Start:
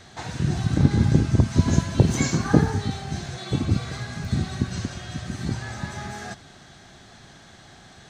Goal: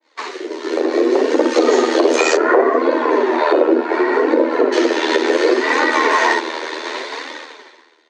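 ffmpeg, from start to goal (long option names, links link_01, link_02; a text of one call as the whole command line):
ffmpeg -i in.wav -af "volume=12dB,asoftclip=hard,volume=-12dB,aecho=1:1:35|56:0.355|0.447,tremolo=f=79:d=0.788,asetnsamples=nb_out_samples=441:pad=0,asendcmd='2.36 lowpass f 1400;4.72 lowpass f 3600',lowpass=4500,flanger=delay=3:depth=9.7:regen=-4:speed=0.68:shape=sinusoidal,afreqshift=240,acompressor=threshold=-41dB:ratio=4,highpass=frequency=690:poles=1,dynaudnorm=framelen=140:gausssize=13:maxgain=12dB,agate=range=-33dB:threshold=-41dB:ratio=3:detection=peak,alimiter=level_in=23dB:limit=-1dB:release=50:level=0:latency=1,adynamicequalizer=threshold=0.0631:dfrequency=1500:dqfactor=0.7:tfrequency=1500:tqfactor=0.7:attack=5:release=100:ratio=0.375:range=1.5:mode=cutabove:tftype=highshelf,volume=-1dB" out.wav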